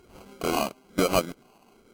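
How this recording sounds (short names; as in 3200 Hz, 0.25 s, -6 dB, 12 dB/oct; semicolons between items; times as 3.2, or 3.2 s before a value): phasing stages 6, 1.1 Hz, lowest notch 480–1200 Hz; aliases and images of a low sample rate 1800 Hz, jitter 0%; Vorbis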